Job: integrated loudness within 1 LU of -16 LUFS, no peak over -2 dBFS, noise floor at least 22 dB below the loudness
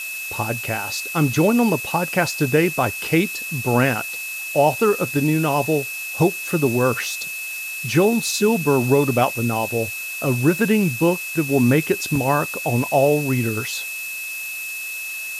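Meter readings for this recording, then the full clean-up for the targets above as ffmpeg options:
steady tone 2600 Hz; tone level -28 dBFS; noise floor -30 dBFS; noise floor target -43 dBFS; loudness -20.5 LUFS; peak -5.0 dBFS; loudness target -16.0 LUFS
-> -af "bandreject=f=2.6k:w=30"
-af "afftdn=nr=13:nf=-30"
-af "volume=4.5dB,alimiter=limit=-2dB:level=0:latency=1"

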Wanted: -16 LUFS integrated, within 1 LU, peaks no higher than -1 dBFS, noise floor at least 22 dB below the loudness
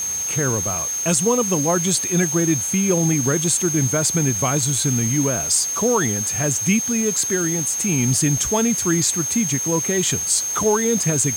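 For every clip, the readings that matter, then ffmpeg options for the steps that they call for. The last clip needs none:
steady tone 6400 Hz; tone level -22 dBFS; noise floor -25 dBFS; noise floor target -41 dBFS; loudness -18.5 LUFS; peak -6.5 dBFS; loudness target -16.0 LUFS
-> -af "bandreject=f=6.4k:w=30"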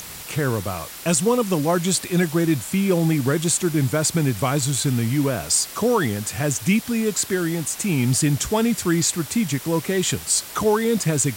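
steady tone none; noise floor -37 dBFS; noise floor target -43 dBFS
-> -af "afftdn=nr=6:nf=-37"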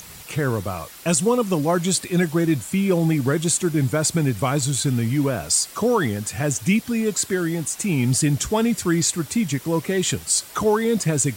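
noise floor -41 dBFS; noise floor target -44 dBFS
-> -af "afftdn=nr=6:nf=-41"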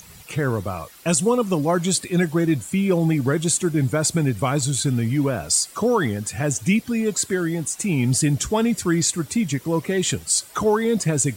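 noise floor -45 dBFS; loudness -21.5 LUFS; peak -7.5 dBFS; loudness target -16.0 LUFS
-> -af "volume=5.5dB"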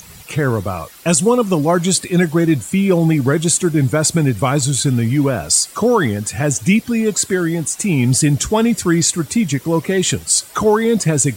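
loudness -16.0 LUFS; peak -2.0 dBFS; noise floor -39 dBFS

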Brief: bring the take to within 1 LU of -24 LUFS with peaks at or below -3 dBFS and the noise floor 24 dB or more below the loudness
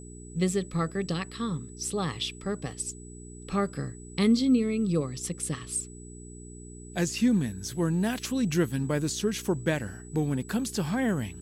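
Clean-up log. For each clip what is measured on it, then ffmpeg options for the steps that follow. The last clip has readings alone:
hum 60 Hz; harmonics up to 420 Hz; hum level -43 dBFS; steady tone 7900 Hz; tone level -50 dBFS; loudness -29.0 LUFS; peak -14.0 dBFS; loudness target -24.0 LUFS
-> -af "bandreject=f=60:t=h:w=4,bandreject=f=120:t=h:w=4,bandreject=f=180:t=h:w=4,bandreject=f=240:t=h:w=4,bandreject=f=300:t=h:w=4,bandreject=f=360:t=h:w=4,bandreject=f=420:t=h:w=4"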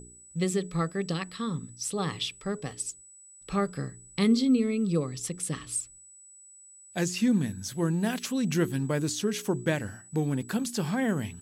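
hum none; steady tone 7900 Hz; tone level -50 dBFS
-> -af "bandreject=f=7.9k:w=30"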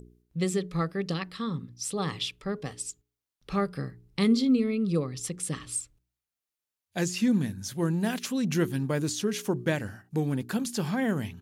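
steady tone none; loudness -29.5 LUFS; peak -13.5 dBFS; loudness target -24.0 LUFS
-> -af "volume=5.5dB"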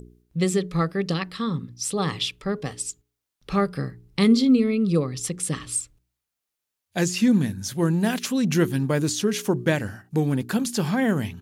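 loudness -24.0 LUFS; peak -8.0 dBFS; noise floor -84 dBFS

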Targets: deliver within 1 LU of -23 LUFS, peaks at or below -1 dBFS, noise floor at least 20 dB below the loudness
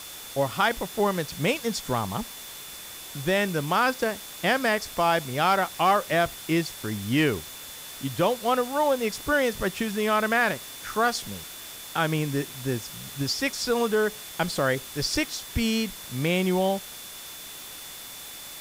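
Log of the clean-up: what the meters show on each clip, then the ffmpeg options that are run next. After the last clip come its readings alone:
steady tone 3500 Hz; tone level -46 dBFS; noise floor -41 dBFS; noise floor target -46 dBFS; loudness -26.0 LUFS; peak -11.5 dBFS; loudness target -23.0 LUFS
-> -af "bandreject=f=3.5k:w=30"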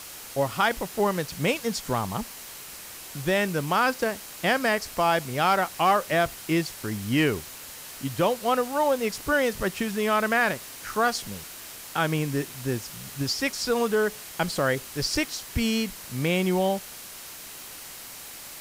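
steady tone none; noise floor -42 dBFS; noise floor target -46 dBFS
-> -af "afftdn=nr=6:nf=-42"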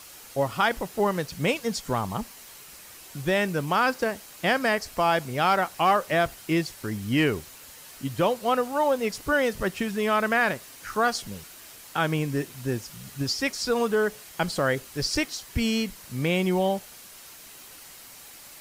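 noise floor -47 dBFS; loudness -26.0 LUFS; peak -11.5 dBFS; loudness target -23.0 LUFS
-> -af "volume=3dB"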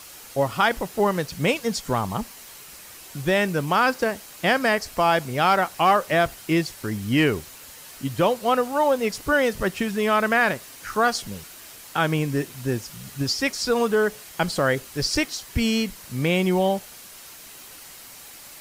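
loudness -23.0 LUFS; peak -8.5 dBFS; noise floor -44 dBFS

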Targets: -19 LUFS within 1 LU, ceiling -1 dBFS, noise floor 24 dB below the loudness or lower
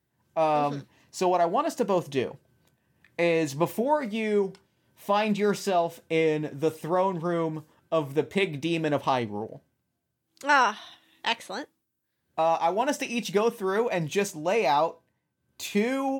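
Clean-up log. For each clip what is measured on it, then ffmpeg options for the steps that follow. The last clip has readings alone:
loudness -26.5 LUFS; peak -9.0 dBFS; loudness target -19.0 LUFS
-> -af "volume=7.5dB"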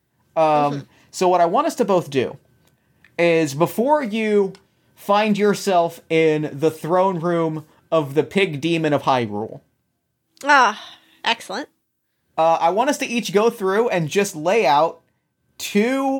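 loudness -19.0 LUFS; peak -1.5 dBFS; noise floor -72 dBFS

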